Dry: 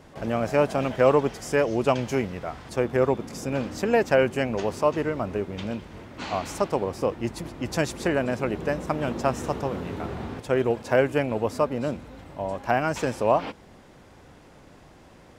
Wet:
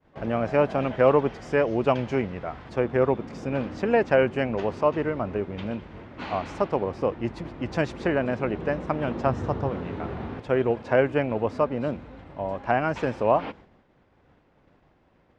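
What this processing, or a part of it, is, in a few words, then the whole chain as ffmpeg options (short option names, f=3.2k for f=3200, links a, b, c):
hearing-loss simulation: -filter_complex "[0:a]lowpass=3k,agate=range=-33dB:threshold=-42dB:ratio=3:detection=peak,asettb=1/sr,asplit=3[a][b][c];[a]atrim=end=9.264[d];[b]atrim=start=9.26:end=9.7,asetpts=PTS-STARTPTS,afade=t=in:d=0.004:c=qsin,afade=t=out:st=0.436:d=0.004:c=qsin,equalizer=f=100:t=o:w=0.67:g=11,equalizer=f=2.5k:t=o:w=0.67:g=-5,equalizer=f=10k:t=o:w=0.67:g=-5[e];[c]atrim=start=9.696[f];[d][e]acrossfade=d=0.004:c1=hsin:c2=qsin[g];[g][f]acrossfade=d=0.004:c1=qsin:c2=hsin"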